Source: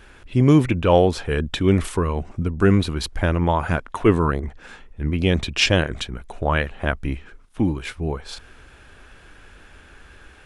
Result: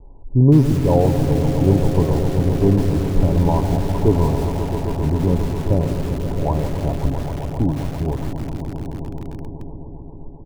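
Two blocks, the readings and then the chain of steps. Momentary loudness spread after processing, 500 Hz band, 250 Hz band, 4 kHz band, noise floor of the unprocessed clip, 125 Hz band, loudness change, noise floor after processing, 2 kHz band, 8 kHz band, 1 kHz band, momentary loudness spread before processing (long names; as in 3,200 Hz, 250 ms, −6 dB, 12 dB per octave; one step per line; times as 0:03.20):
15 LU, +1.0 dB, +2.5 dB, −11.5 dB, −48 dBFS, +5.5 dB, +2.0 dB, −35 dBFS, −12.5 dB, −3.5 dB, −1.0 dB, 13 LU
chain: de-essing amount 90%
Butterworth low-pass 1,000 Hz 96 dB per octave
low-shelf EQ 88 Hz +11 dB
comb filter 7.2 ms, depth 37%
echo that builds up and dies away 133 ms, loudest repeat 5, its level −12 dB
feedback echo at a low word length 165 ms, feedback 55%, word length 4 bits, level −10 dB
level −1.5 dB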